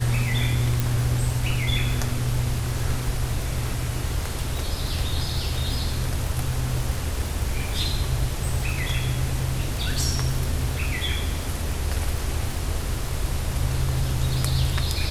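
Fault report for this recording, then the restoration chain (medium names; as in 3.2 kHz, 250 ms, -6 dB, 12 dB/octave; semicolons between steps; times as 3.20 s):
crackle 50 per s -28 dBFS
0.80 s: pop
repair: de-click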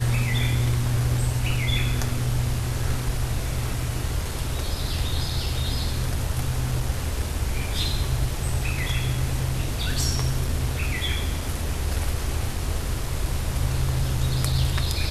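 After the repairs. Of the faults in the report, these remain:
nothing left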